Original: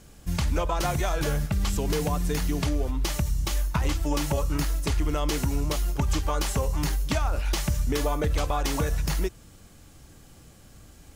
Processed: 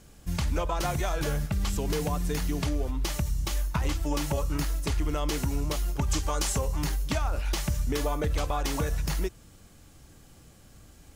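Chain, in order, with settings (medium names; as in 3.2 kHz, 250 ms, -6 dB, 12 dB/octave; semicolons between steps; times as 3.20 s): 6.06–6.58 s: dynamic bell 7.2 kHz, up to +7 dB, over -49 dBFS, Q 0.91; trim -2.5 dB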